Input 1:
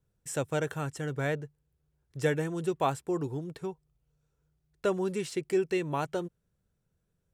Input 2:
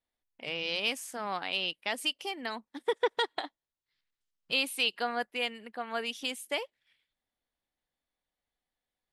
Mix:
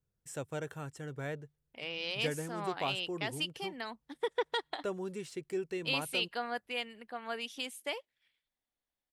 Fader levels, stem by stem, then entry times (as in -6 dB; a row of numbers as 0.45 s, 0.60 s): -8.5 dB, -4.5 dB; 0.00 s, 1.35 s